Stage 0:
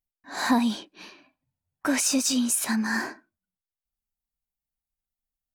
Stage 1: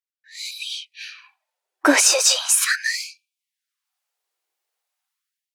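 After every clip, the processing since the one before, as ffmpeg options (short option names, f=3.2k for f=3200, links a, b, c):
-af "highshelf=f=10k:g=-10.5,dynaudnorm=f=220:g=5:m=16dB,afftfilt=real='re*gte(b*sr/1024,300*pow(2300/300,0.5+0.5*sin(2*PI*0.39*pts/sr)))':imag='im*gte(b*sr/1024,300*pow(2300/300,0.5+0.5*sin(2*PI*0.39*pts/sr)))':win_size=1024:overlap=0.75"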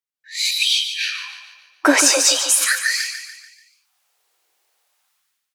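-filter_complex "[0:a]dynaudnorm=f=130:g=5:m=14dB,asplit=2[a][b];[b]aecho=0:1:145|290|435|580|725:0.355|0.167|0.0784|0.0368|0.0173[c];[a][c]amix=inputs=2:normalize=0,volume=-1dB"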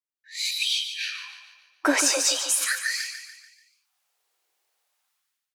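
-af "aeval=exprs='0.891*(cos(1*acos(clip(val(0)/0.891,-1,1)))-cos(1*PI/2))+0.00631*(cos(4*acos(clip(val(0)/0.891,-1,1)))-cos(4*PI/2))':c=same,volume=-7.5dB"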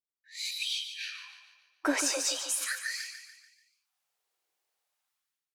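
-af "lowshelf=f=350:g=4,volume=-8dB"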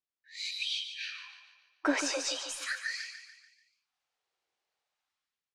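-af "lowpass=5.2k"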